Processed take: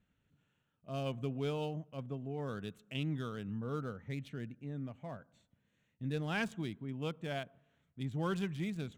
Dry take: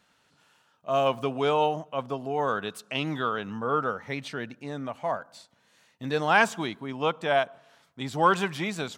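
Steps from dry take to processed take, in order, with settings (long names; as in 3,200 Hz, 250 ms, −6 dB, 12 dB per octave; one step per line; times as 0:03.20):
adaptive Wiener filter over 9 samples
guitar amp tone stack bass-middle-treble 10-0-1
level +12 dB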